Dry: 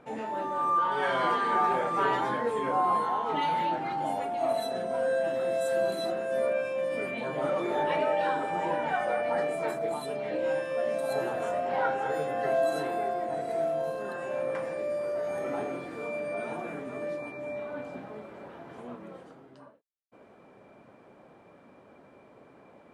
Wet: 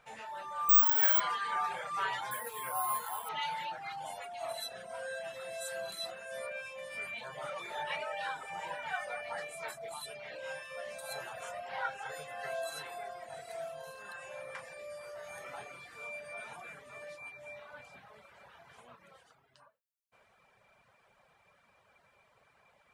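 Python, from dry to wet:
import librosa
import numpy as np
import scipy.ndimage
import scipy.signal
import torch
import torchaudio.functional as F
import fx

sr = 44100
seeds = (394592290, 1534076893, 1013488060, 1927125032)

y = fx.resample_bad(x, sr, factor=2, down='none', up='zero_stuff', at=(0.69, 1.2))
y = fx.resample_bad(y, sr, factor=4, down='none', up='hold', at=(2.31, 3.29))
y = fx.dereverb_blind(y, sr, rt60_s=0.8)
y = fx.tone_stack(y, sr, knobs='10-0-10')
y = y * 10.0 ** (3.0 / 20.0)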